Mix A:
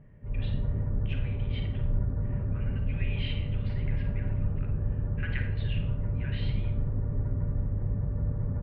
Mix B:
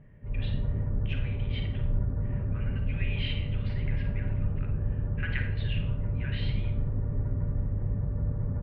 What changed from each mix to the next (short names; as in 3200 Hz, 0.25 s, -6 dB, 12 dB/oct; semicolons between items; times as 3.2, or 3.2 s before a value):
speech +3.0 dB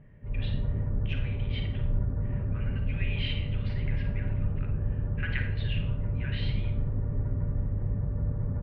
master: remove air absorption 51 m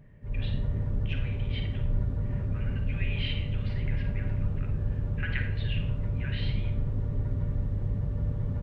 background: remove LPF 1900 Hz 24 dB/oct